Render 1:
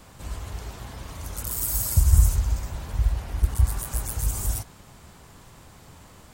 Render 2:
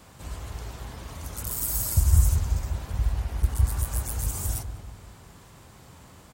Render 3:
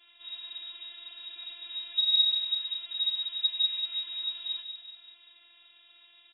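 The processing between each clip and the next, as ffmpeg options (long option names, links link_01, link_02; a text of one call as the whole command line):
ffmpeg -i in.wav -filter_complex "[0:a]highpass=42,asplit=2[link_01][link_02];[link_02]adelay=192,lowpass=frequency=840:poles=1,volume=-7dB,asplit=2[link_03][link_04];[link_04]adelay=192,lowpass=frequency=840:poles=1,volume=0.5,asplit=2[link_05][link_06];[link_06]adelay=192,lowpass=frequency=840:poles=1,volume=0.5,asplit=2[link_07][link_08];[link_08]adelay=192,lowpass=frequency=840:poles=1,volume=0.5,asplit=2[link_09][link_10];[link_10]adelay=192,lowpass=frequency=840:poles=1,volume=0.5,asplit=2[link_11][link_12];[link_12]adelay=192,lowpass=frequency=840:poles=1,volume=0.5[link_13];[link_01][link_03][link_05][link_07][link_09][link_11][link_13]amix=inputs=7:normalize=0,volume=-1.5dB" out.wav
ffmpeg -i in.wav -af "lowpass=frequency=3200:width_type=q:width=0.5098,lowpass=frequency=3200:width_type=q:width=0.6013,lowpass=frequency=3200:width_type=q:width=0.9,lowpass=frequency=3200:width_type=q:width=2.563,afreqshift=-3800,afftfilt=real='hypot(re,im)*cos(PI*b)':imag='0':win_size=512:overlap=0.75,volume=-4dB" out.wav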